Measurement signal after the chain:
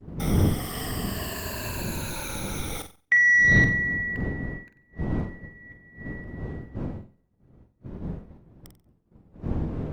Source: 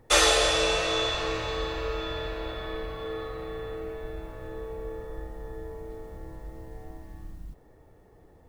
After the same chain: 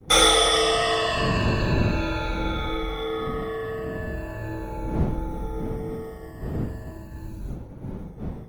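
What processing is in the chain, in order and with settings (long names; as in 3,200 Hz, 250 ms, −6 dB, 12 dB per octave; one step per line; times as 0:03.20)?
rippled gain that drifts along the octave scale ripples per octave 1.4, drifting −0.37 Hz, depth 18 dB
wind on the microphone 190 Hz −32 dBFS
downward expander −37 dBFS
low-shelf EQ 78 Hz −3 dB
in parallel at −1 dB: downward compressor 10 to 1, threshold −35 dBFS
on the sum: soft clipping −7 dBFS
on a send: flutter between parallel walls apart 7.9 metres, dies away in 0.33 s
on the sum: Opus 24 kbit/s 48,000 Hz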